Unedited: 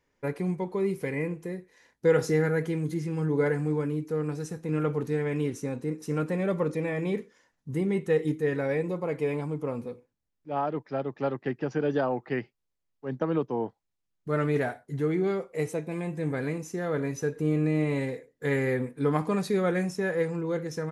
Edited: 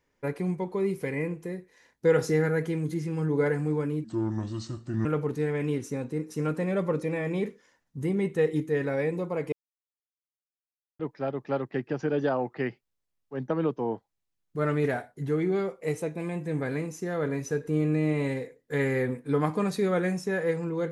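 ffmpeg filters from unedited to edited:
-filter_complex "[0:a]asplit=5[s0][s1][s2][s3][s4];[s0]atrim=end=4.044[s5];[s1]atrim=start=4.04:end=4.77,asetpts=PTS-STARTPTS,asetrate=31752,aresample=44100,atrim=end_sample=44712,asetpts=PTS-STARTPTS[s6];[s2]atrim=start=4.766:end=9.24,asetpts=PTS-STARTPTS,afade=t=out:st=4.47:d=0.004:c=hsin[s7];[s3]atrim=start=9.24:end=10.71,asetpts=PTS-STARTPTS,volume=0[s8];[s4]atrim=start=10.71,asetpts=PTS-STARTPTS,afade=t=in:d=0.004:c=hsin[s9];[s5][s6]acrossfade=d=0.004:c1=hsin:c2=hsin[s10];[s7][s8][s9]concat=n=3:v=0:a=1[s11];[s10][s11]acrossfade=d=0.004:c1=hsin:c2=hsin"

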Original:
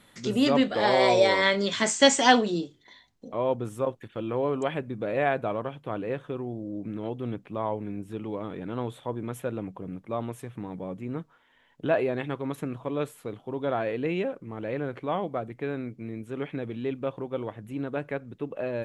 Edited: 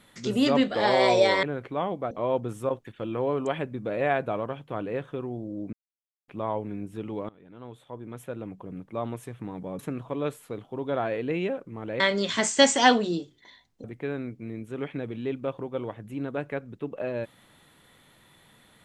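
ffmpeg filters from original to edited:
-filter_complex "[0:a]asplit=9[s0][s1][s2][s3][s4][s5][s6][s7][s8];[s0]atrim=end=1.432[s9];[s1]atrim=start=14.748:end=15.432[s10];[s2]atrim=start=3.268:end=6.89,asetpts=PTS-STARTPTS,afade=t=out:st=3.618:d=0.004:c=hsin[s11];[s3]atrim=start=6.89:end=7.44,asetpts=PTS-STARTPTS,volume=0[s12];[s4]atrim=start=7.44:end=8.45,asetpts=PTS-STARTPTS,afade=t=in:d=0.004:c=hsin,afade=t=out:st=1.006:d=0.004:c=hsin:silence=0.0794328[s13];[s5]atrim=start=8.45:end=10.952,asetpts=PTS-STARTPTS,afade=t=in:d=1.79:silence=0.0794328[s14];[s6]atrim=start=12.538:end=14.752[s15];[s7]atrim=start=1.428:end=3.272[s16];[s8]atrim=start=15.428[s17];[s9][s10]acrossfade=d=0.004:c1=hsin:c2=hsin[s18];[s11][s12][s13][s14]concat=n=4:v=0:a=1[s19];[s18][s19]acrossfade=d=0.004:c1=hsin:c2=hsin[s20];[s20][s15]acrossfade=d=0.004:c1=hsin:c2=hsin[s21];[s21][s16]acrossfade=d=0.004:c1=hsin:c2=hsin[s22];[s22][s17]acrossfade=d=0.004:c1=hsin:c2=hsin"

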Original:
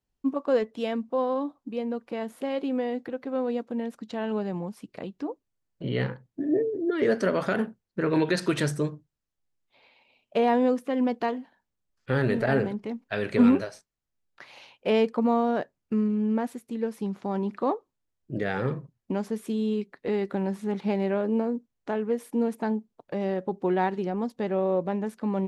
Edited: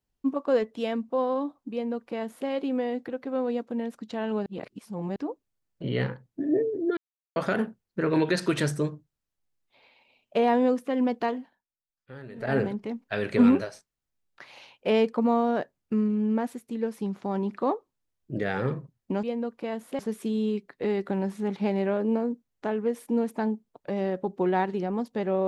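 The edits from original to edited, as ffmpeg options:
-filter_complex "[0:a]asplit=9[s0][s1][s2][s3][s4][s5][s6][s7][s8];[s0]atrim=end=4.462[s9];[s1]atrim=start=4.458:end=5.162,asetpts=PTS-STARTPTS,areverse[s10];[s2]atrim=start=5.158:end=6.97,asetpts=PTS-STARTPTS,afade=t=out:st=1.808:d=0.004:c=hsin[s11];[s3]atrim=start=6.97:end=7.36,asetpts=PTS-STARTPTS,volume=0[s12];[s4]atrim=start=7.36:end=11.64,asetpts=PTS-STARTPTS,afade=t=in:d=0.004:c=hsin,afade=t=out:st=4.04:d=0.24:silence=0.11885[s13];[s5]atrim=start=11.64:end=12.35,asetpts=PTS-STARTPTS,volume=0.119[s14];[s6]atrim=start=12.35:end=19.232,asetpts=PTS-STARTPTS,afade=t=in:d=0.24:silence=0.11885[s15];[s7]atrim=start=1.718:end=2.482[s16];[s8]atrim=start=19.228[s17];[s9][s10]acrossfade=d=0.004:c1=hsin:c2=hsin[s18];[s11][s12][s13][s14][s15]concat=n=5:v=0:a=1[s19];[s18][s19]acrossfade=d=0.004:c1=hsin:c2=hsin[s20];[s20][s16]acrossfade=d=0.004:c1=hsin:c2=hsin[s21];[s21][s17]acrossfade=d=0.004:c1=hsin:c2=hsin"

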